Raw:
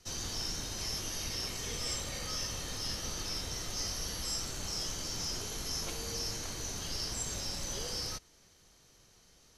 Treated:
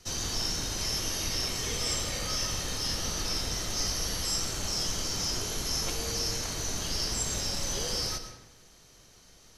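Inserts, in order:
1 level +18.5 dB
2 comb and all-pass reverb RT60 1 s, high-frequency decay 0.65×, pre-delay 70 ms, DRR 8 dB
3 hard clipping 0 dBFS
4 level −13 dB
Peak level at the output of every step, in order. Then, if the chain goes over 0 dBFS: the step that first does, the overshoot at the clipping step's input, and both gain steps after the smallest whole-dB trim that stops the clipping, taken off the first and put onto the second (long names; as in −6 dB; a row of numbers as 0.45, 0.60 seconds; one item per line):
−3.5, −3.5, −3.5, −16.5 dBFS
no step passes full scale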